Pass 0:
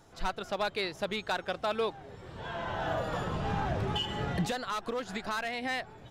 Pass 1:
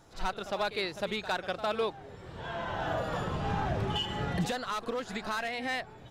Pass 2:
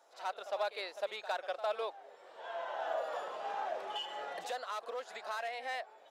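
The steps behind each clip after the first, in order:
backwards echo 56 ms −13 dB
four-pole ladder high-pass 500 Hz, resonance 45%; level +1 dB

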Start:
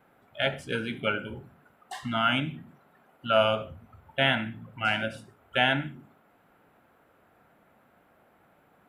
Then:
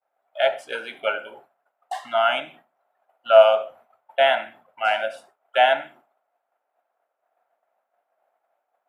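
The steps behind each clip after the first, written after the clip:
high-pass with resonance 670 Hz, resonance Q 3.9
downward expander −44 dBFS
level +1 dB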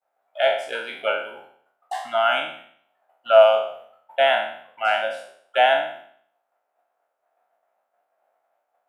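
peak hold with a decay on every bin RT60 0.60 s
level −1 dB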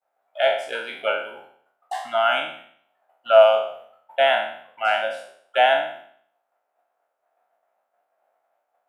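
no processing that can be heard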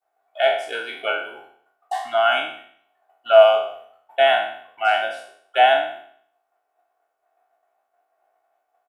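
comb filter 2.7 ms, depth 58%

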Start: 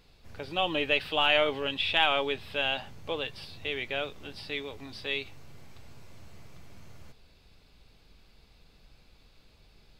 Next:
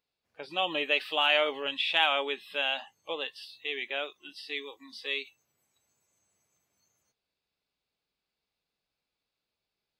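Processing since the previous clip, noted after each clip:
noise reduction from a noise print of the clip's start 22 dB
high-pass filter 430 Hz 6 dB per octave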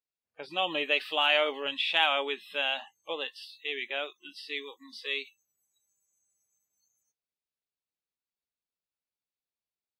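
noise reduction from a noise print of the clip's start 15 dB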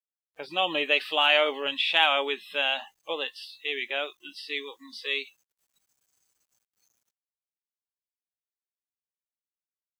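high-pass filter 80 Hz 6 dB per octave
bit-depth reduction 12 bits, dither none
level +3.5 dB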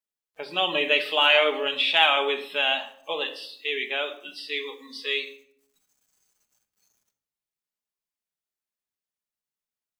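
convolution reverb RT60 0.65 s, pre-delay 5 ms, DRR 5.5 dB
level +1.5 dB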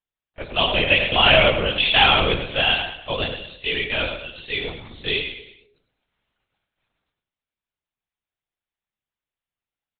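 on a send: repeating echo 104 ms, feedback 39%, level −8 dB
on the sum: linear-prediction vocoder at 8 kHz whisper
level +4 dB

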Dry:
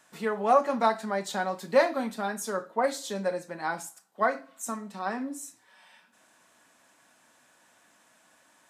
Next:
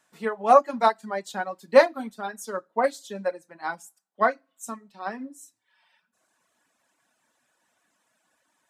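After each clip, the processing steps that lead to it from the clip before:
reverb reduction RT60 1.2 s
expander for the loud parts 1.5 to 1, over −43 dBFS
level +7 dB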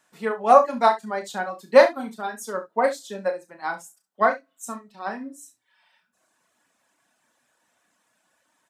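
ambience of single reflections 33 ms −8.5 dB, 68 ms −14.5 dB
level +1.5 dB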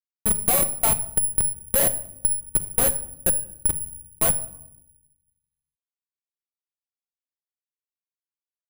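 comparator with hysteresis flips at −18 dBFS
rectangular room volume 1,900 cubic metres, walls furnished, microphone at 0.82 metres
bad sample-rate conversion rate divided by 4×, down filtered, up zero stuff

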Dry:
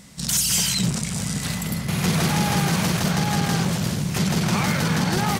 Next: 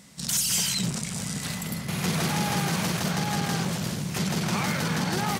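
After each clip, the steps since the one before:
high-pass filter 130 Hz 6 dB per octave
level −4 dB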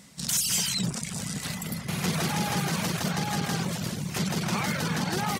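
reverb reduction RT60 0.57 s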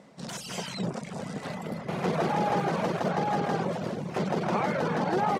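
resonant band-pass 550 Hz, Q 1.3
level +9 dB

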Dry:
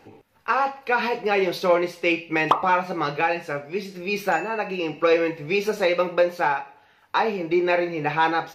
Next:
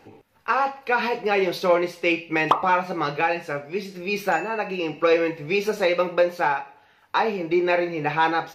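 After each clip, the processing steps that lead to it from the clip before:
no processing that can be heard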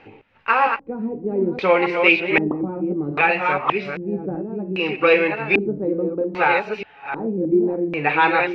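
delay that plays each chunk backwards 621 ms, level −5 dB
auto-filter low-pass square 0.63 Hz 280–2,600 Hz
level +2 dB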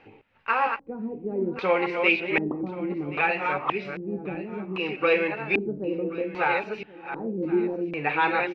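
single-tap delay 1,078 ms −18 dB
level −6.5 dB

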